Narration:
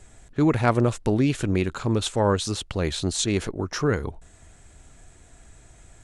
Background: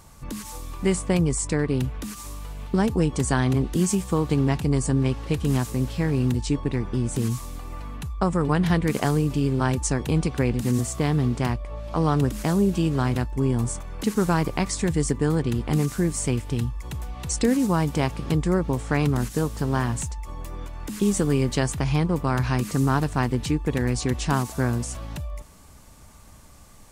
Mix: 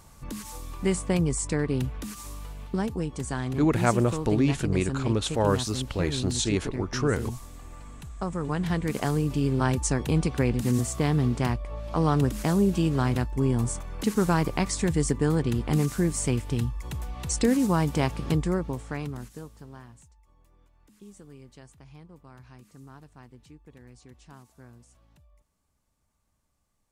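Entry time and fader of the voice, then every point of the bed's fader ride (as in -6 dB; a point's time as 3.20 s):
3.20 s, -2.5 dB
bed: 2.43 s -3 dB
3.06 s -9 dB
8.17 s -9 dB
9.57 s -1.5 dB
18.32 s -1.5 dB
20.08 s -26.5 dB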